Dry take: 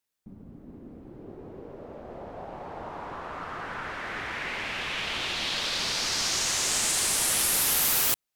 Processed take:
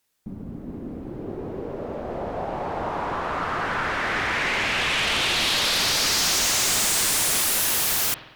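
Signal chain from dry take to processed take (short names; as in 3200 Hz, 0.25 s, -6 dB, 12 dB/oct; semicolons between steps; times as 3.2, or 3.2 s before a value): spring tank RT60 1 s, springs 48 ms, DRR 19 dB; sine folder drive 15 dB, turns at -10.5 dBFS; gain -8 dB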